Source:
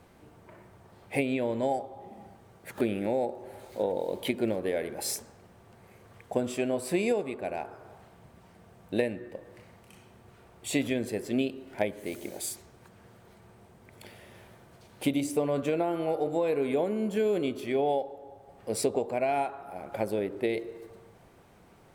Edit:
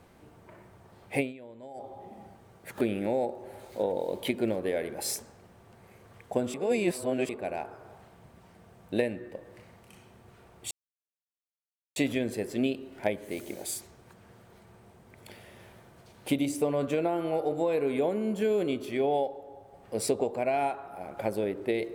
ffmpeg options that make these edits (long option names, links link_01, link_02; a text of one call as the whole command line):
ffmpeg -i in.wav -filter_complex "[0:a]asplit=6[link_01][link_02][link_03][link_04][link_05][link_06];[link_01]atrim=end=1.33,asetpts=PTS-STARTPTS,afade=type=out:start_time=1.2:duration=0.13:silence=0.133352[link_07];[link_02]atrim=start=1.33:end=1.74,asetpts=PTS-STARTPTS,volume=-17.5dB[link_08];[link_03]atrim=start=1.74:end=6.542,asetpts=PTS-STARTPTS,afade=type=in:duration=0.13:silence=0.133352[link_09];[link_04]atrim=start=6.538:end=7.292,asetpts=PTS-STARTPTS,areverse[link_10];[link_05]atrim=start=7.288:end=10.71,asetpts=PTS-STARTPTS,afade=type=out:start_time=3.418:duration=0.004:curve=hsin,apad=pad_dur=1.25[link_11];[link_06]atrim=start=10.71,asetpts=PTS-STARTPTS,afade=type=in:duration=0.004:curve=hsin[link_12];[link_07][link_08][link_09]concat=n=3:v=0:a=1[link_13];[link_13][link_10]acrossfade=duration=0.004:curve1=hsin:curve2=hsin[link_14];[link_11][link_12]concat=n=2:v=0:a=1[link_15];[link_14][link_15]acrossfade=duration=0.004:curve1=hsin:curve2=hsin" out.wav